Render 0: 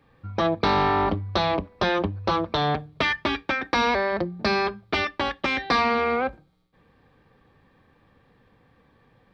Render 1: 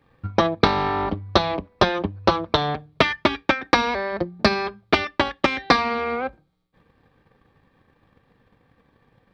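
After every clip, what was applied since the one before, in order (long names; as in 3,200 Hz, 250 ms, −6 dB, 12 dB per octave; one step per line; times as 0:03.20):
transient designer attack +11 dB, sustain −3 dB
level −2 dB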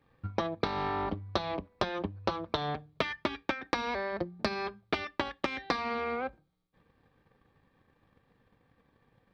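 downward compressor 4 to 1, threshold −20 dBFS, peak gain reduction 8.5 dB
level −7.5 dB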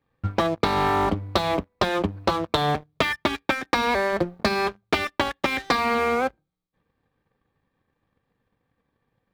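leveller curve on the samples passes 3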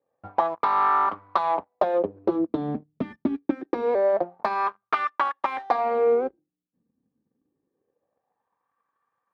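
LFO wah 0.25 Hz 230–1,200 Hz, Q 4.1
level +7.5 dB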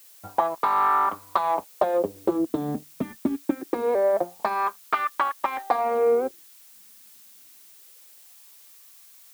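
background noise blue −51 dBFS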